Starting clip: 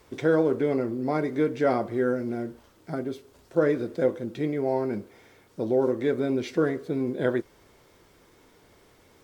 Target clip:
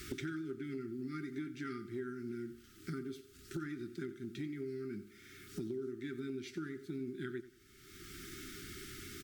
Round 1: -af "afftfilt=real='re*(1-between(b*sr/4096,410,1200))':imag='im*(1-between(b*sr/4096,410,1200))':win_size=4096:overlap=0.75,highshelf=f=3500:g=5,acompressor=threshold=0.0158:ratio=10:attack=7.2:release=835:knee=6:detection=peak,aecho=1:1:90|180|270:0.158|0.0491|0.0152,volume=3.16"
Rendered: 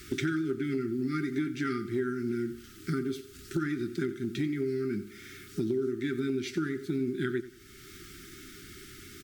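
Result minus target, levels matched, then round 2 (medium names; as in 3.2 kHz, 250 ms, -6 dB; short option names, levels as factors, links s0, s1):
compression: peak gain reduction -11 dB
-af "afftfilt=real='re*(1-between(b*sr/4096,410,1200))':imag='im*(1-between(b*sr/4096,410,1200))':win_size=4096:overlap=0.75,highshelf=f=3500:g=5,acompressor=threshold=0.00398:ratio=10:attack=7.2:release=835:knee=6:detection=peak,aecho=1:1:90|180|270:0.158|0.0491|0.0152,volume=3.16"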